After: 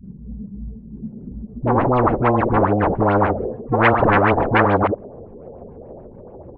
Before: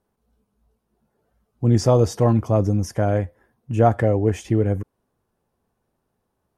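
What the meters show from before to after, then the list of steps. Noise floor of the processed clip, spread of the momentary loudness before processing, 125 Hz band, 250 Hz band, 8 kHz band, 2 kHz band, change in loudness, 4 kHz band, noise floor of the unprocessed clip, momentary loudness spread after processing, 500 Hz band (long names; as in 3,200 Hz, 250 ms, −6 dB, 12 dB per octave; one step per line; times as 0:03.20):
−40 dBFS, 10 LU, −2.5 dB, +3.0 dB, below −30 dB, +16.0 dB, +3.0 dB, +2.0 dB, −75 dBFS, 19 LU, +3.0 dB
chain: adaptive Wiener filter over 9 samples
sample-and-hold swept by an LFO 40×, swing 160% 2.5 Hz
low-pass filter sweep 190 Hz → 600 Hz, 0:00.68–0:04.07
on a send: single-tap delay 79 ms −20.5 dB
on the sum: auto-filter low-pass sine 6.9 Hz 420–2,700 Hz
harmonic and percussive parts rebalanced harmonic +6 dB
all-pass dispersion highs, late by 48 ms, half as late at 400 Hz
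every bin compressed towards the loudest bin 10 to 1
level −5.5 dB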